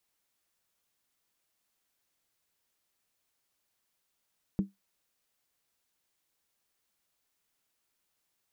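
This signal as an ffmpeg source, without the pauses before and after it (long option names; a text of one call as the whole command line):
ffmpeg -f lavfi -i "aevalsrc='0.0944*pow(10,-3*t/0.17)*sin(2*PI*196*t)+0.0282*pow(10,-3*t/0.135)*sin(2*PI*312.4*t)+0.00841*pow(10,-3*t/0.116)*sin(2*PI*418.7*t)+0.00251*pow(10,-3*t/0.112)*sin(2*PI*450*t)+0.00075*pow(10,-3*t/0.104)*sin(2*PI*520*t)':duration=0.63:sample_rate=44100" out.wav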